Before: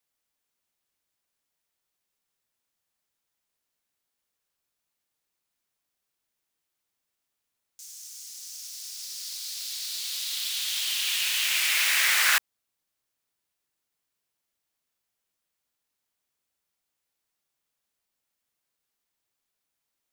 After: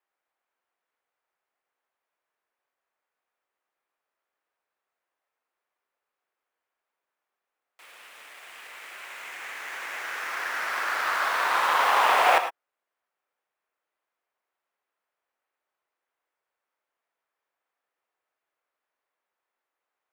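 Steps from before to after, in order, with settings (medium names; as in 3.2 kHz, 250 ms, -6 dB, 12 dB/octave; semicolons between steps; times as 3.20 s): cycle switcher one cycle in 2, inverted; three-band isolator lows -23 dB, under 390 Hz, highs -22 dB, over 2.1 kHz; gated-style reverb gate 130 ms rising, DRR 8.5 dB; trim +7 dB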